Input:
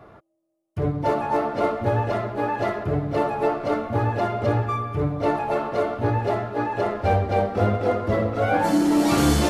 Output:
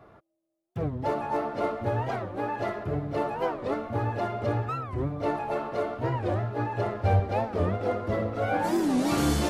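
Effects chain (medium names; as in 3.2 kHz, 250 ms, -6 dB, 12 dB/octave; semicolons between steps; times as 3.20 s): 6.26–7.20 s: peaking EQ 110 Hz +10.5 dB 0.6 oct; warped record 45 rpm, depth 250 cents; trim -6 dB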